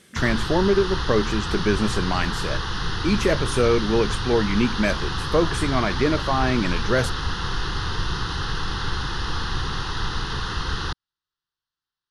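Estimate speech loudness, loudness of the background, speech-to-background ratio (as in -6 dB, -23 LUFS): -23.5 LUFS, -27.5 LUFS, 4.0 dB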